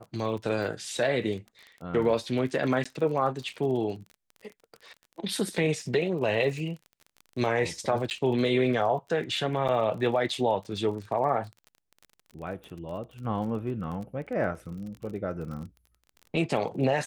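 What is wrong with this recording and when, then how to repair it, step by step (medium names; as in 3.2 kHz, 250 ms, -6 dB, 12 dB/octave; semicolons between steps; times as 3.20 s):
crackle 32 per s -37 dBFS
2.84–2.85 s: dropout 15 ms
8.10–8.11 s: dropout 9.5 ms
9.68–9.69 s: dropout 6.6 ms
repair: de-click; interpolate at 2.84 s, 15 ms; interpolate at 8.10 s, 9.5 ms; interpolate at 9.68 s, 6.6 ms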